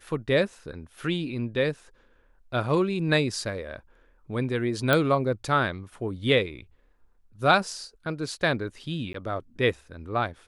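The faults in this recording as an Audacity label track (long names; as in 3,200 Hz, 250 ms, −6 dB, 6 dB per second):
4.930000	4.930000	click −8 dBFS
9.130000	9.140000	drop-out 13 ms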